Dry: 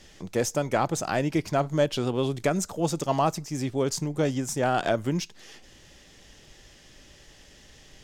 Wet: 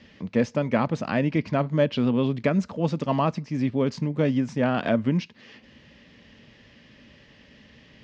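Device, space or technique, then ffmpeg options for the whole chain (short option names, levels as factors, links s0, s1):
guitar cabinet: -af "highpass=86,equalizer=f=230:t=q:w=4:g=9,equalizer=f=360:t=q:w=4:g=-8,equalizer=f=760:t=q:w=4:g=-9,equalizer=f=1400:t=q:w=4:g=-5,equalizer=f=3500:t=q:w=4:g=-6,lowpass=f=3800:w=0.5412,lowpass=f=3800:w=1.3066,volume=1.5"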